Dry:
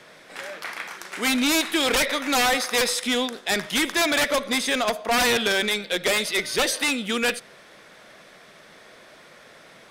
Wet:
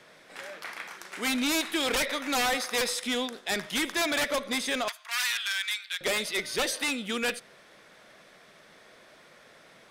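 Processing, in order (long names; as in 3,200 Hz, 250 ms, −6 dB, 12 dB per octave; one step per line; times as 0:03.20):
0:04.88–0:06.01: high-pass filter 1,300 Hz 24 dB per octave
level −6 dB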